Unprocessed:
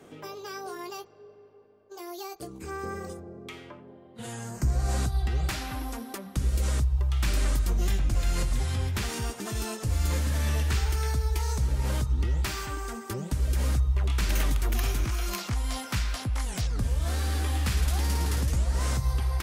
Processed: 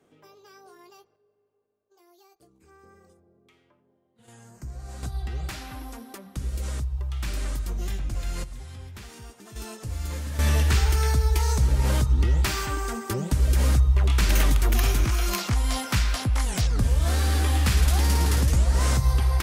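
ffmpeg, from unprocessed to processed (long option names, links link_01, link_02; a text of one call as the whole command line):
ffmpeg -i in.wav -af "asetnsamples=nb_out_samples=441:pad=0,asendcmd='1.16 volume volume -19dB;4.28 volume volume -12dB;5.03 volume volume -4dB;8.44 volume volume -12dB;9.56 volume volume -5dB;10.39 volume volume 5.5dB',volume=-13dB" out.wav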